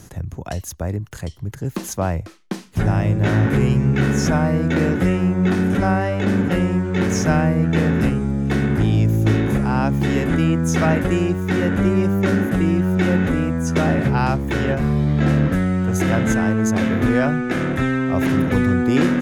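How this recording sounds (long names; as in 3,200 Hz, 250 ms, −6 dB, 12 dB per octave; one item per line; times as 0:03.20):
background noise floor −38 dBFS
spectral slope −6.0 dB per octave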